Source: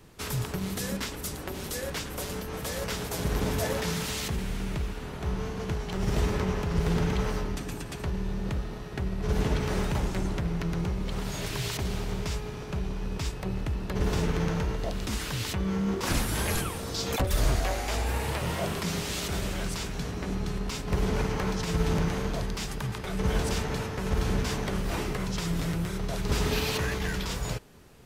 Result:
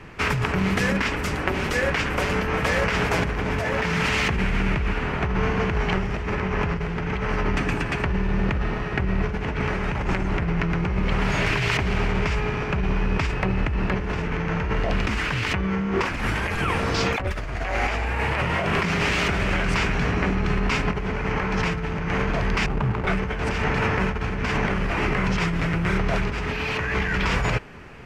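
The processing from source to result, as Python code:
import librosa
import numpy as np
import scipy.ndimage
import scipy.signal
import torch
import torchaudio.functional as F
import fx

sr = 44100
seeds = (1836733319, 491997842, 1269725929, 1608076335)

y = fx.env_flatten(x, sr, amount_pct=70, at=(15.0, 15.52))
y = fx.median_filter(y, sr, points=25, at=(22.66, 23.07))
y = fx.curve_eq(y, sr, hz=(530.0, 2400.0, 13000.0), db=(0, 9, -22))
y = fx.over_compress(y, sr, threshold_db=-31.0, ratio=-1.0)
y = fx.peak_eq(y, sr, hz=3700.0, db=-8.5, octaves=0.55)
y = y * 10.0 ** (8.0 / 20.0)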